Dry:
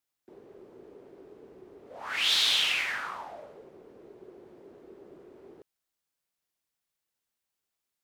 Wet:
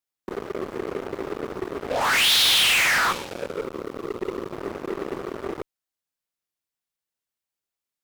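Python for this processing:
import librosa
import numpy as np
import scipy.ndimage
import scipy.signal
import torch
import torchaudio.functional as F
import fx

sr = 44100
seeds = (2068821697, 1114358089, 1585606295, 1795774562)

p1 = fx.spec_box(x, sr, start_s=3.12, length_s=1.4, low_hz=580.0, high_hz=2200.0, gain_db=-17)
p2 = fx.fuzz(p1, sr, gain_db=46.0, gate_db=-52.0)
p3 = p1 + (p2 * 10.0 ** (-3.5 / 20.0))
y = p3 * 10.0 ** (-3.5 / 20.0)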